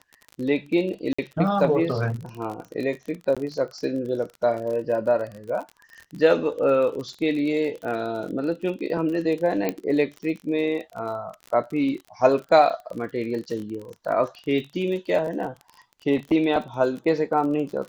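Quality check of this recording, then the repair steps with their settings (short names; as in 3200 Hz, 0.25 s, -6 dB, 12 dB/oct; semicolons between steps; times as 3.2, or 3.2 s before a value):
crackle 38/s -32 dBFS
1.13–1.19 gap 55 ms
3.35–3.37 gap 16 ms
9.69 pop -11 dBFS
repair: de-click; interpolate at 1.13, 55 ms; interpolate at 3.35, 16 ms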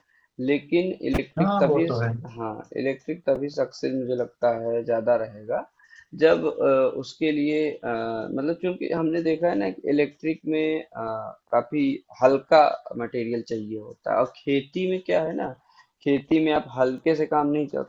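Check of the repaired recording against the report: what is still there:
none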